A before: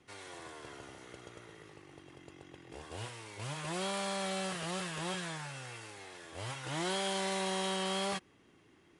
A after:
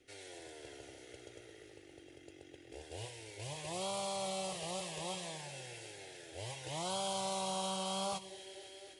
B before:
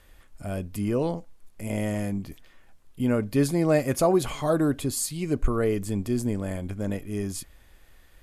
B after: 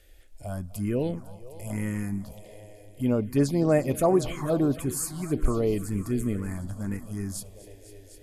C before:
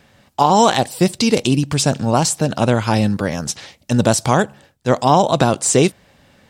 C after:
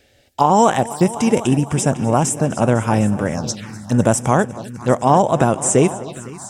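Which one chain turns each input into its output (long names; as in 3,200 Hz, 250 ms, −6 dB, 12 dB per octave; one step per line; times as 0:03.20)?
echo machine with several playback heads 252 ms, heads all three, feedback 44%, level −19 dB
phaser swept by the level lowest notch 170 Hz, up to 4,300 Hz, full sweep at −16 dBFS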